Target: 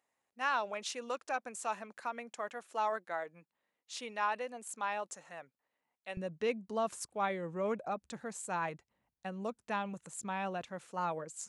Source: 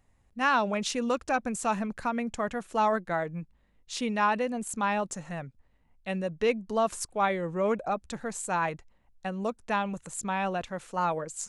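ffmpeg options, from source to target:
ffmpeg -i in.wav -af "asetnsamples=nb_out_samples=441:pad=0,asendcmd='6.17 highpass f 110',highpass=470,volume=-7.5dB" out.wav

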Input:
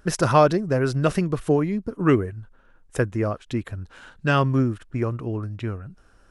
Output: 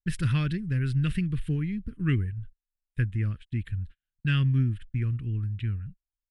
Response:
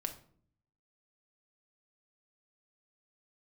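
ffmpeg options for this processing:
-af "aemphasis=mode=reproduction:type=bsi,agate=range=-43dB:threshold=-30dB:ratio=16:detection=peak,firequalizer=gain_entry='entry(150,0);entry(670,-28);entry(1700,4);entry(3200,10);entry(6000,-6);entry(8700,10)':delay=0.05:min_phase=1,volume=-8.5dB"

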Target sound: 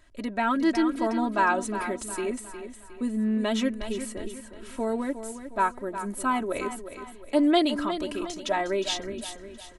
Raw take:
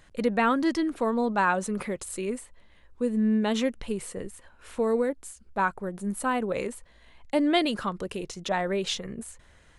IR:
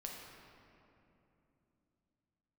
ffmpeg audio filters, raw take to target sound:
-af "aecho=1:1:3.1:0.82,aecho=1:1:360|720|1080|1440|1800:0.299|0.128|0.0552|0.0237|0.0102,dynaudnorm=framelen=250:gausssize=5:maxgain=4dB,volume=-5.5dB"

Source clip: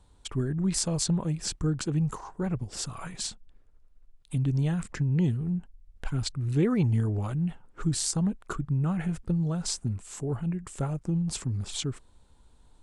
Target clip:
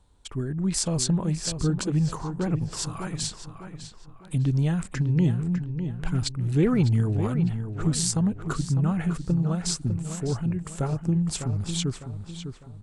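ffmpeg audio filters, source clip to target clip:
ffmpeg -i in.wav -filter_complex "[0:a]dynaudnorm=framelen=240:gausssize=5:maxgain=5dB,asplit=2[link_01][link_02];[link_02]adelay=603,lowpass=frequency=3500:poles=1,volume=-8.5dB,asplit=2[link_03][link_04];[link_04]adelay=603,lowpass=frequency=3500:poles=1,volume=0.4,asplit=2[link_05][link_06];[link_06]adelay=603,lowpass=frequency=3500:poles=1,volume=0.4,asplit=2[link_07][link_08];[link_08]adelay=603,lowpass=frequency=3500:poles=1,volume=0.4[link_09];[link_01][link_03][link_05][link_07][link_09]amix=inputs=5:normalize=0,volume=-2dB" out.wav

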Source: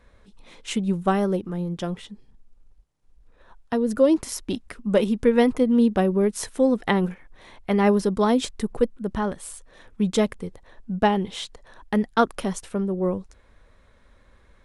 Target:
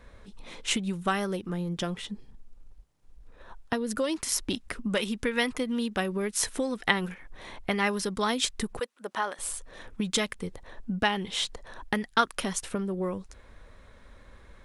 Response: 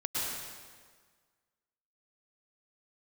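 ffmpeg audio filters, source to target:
-filter_complex "[0:a]asettb=1/sr,asplit=3[link_01][link_02][link_03];[link_01]atrim=end=8.794[link_04];[link_02]atrim=start=8.79:end=9.39,asetpts=PTS-STARTPTS,afade=type=in:duration=0.004:curve=qsin,afade=type=out:start_time=0.596:duration=0.004:curve=qsin,highpass=760[link_05];[link_03]atrim=start=9.386[link_06];[link_04][link_05]acrossfade=duration=0.004:curve1=hsin:curve2=qsin[link_07];[link_07][link_06]acrossfade=duration=0.004:curve1=qsin:curve2=hsin,acrossover=split=1300[link_08][link_09];[link_08]acompressor=threshold=-33dB:ratio=6[link_10];[link_10][link_09]amix=inputs=2:normalize=0,volume=4dB"

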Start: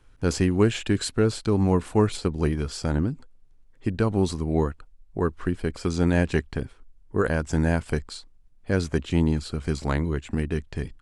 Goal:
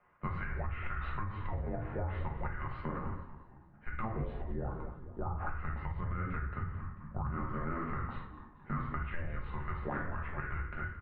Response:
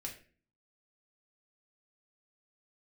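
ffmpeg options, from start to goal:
-filter_complex "[0:a]highpass=frequency=360:width_type=q:width=0.5412,highpass=frequency=360:width_type=q:width=1.307,lowpass=frequency=2400:width_type=q:width=0.5176,lowpass=frequency=2400:width_type=q:width=0.7071,lowpass=frequency=2400:width_type=q:width=1.932,afreqshift=-340,asettb=1/sr,asplit=3[link_01][link_02][link_03];[link_01]atrim=end=5.754[link_04];[link_02]atrim=start=5.75:end=7.29,asetpts=PTS-STARTPTS,afade=type=in:duration=0.004:curve=qsin,afade=type=out:start_time=1.536:duration=0.004:curve=qsin,equalizer=frequency=98:width_type=o:width=1.7:gain=10.5[link_05];[link_03]atrim=start=7.286[link_06];[link_04][link_05]acrossfade=duration=0.004:curve1=hsin:curve2=qsin[link_07];[link_07][link_06]acrossfade=duration=0.004:curve1=qsin:curve2=hsin,asplit=6[link_08][link_09][link_10][link_11][link_12][link_13];[link_09]adelay=221,afreqshift=-73,volume=-16.5dB[link_14];[link_10]adelay=442,afreqshift=-146,volume=-22.2dB[link_15];[link_11]adelay=663,afreqshift=-219,volume=-27.9dB[link_16];[link_12]adelay=884,afreqshift=-292,volume=-33.5dB[link_17];[link_13]adelay=1105,afreqshift=-365,volume=-39.2dB[link_18];[link_08][link_14][link_15][link_16][link_17][link_18]amix=inputs=6:normalize=0[link_19];[1:a]atrim=start_sample=2205,asetrate=30870,aresample=44100[link_20];[link_19][link_20]afir=irnorm=-1:irlink=0,acompressor=threshold=-28dB:ratio=3,alimiter=level_in=1.5dB:limit=-24dB:level=0:latency=1:release=123,volume=-1.5dB,lowshelf=frequency=260:gain=-6.5,asplit=2[link_21][link_22];[link_22]adelay=13,volume=-10.5dB[link_23];[link_21][link_23]amix=inputs=2:normalize=0,volume=2dB"

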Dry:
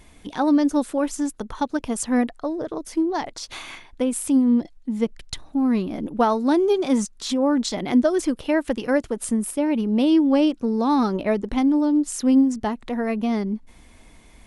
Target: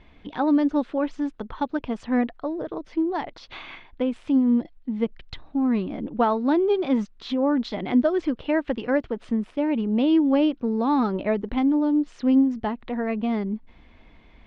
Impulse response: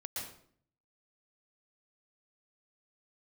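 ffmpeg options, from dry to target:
-af "lowpass=frequency=3600:width=0.5412,lowpass=frequency=3600:width=1.3066,volume=-2dB"

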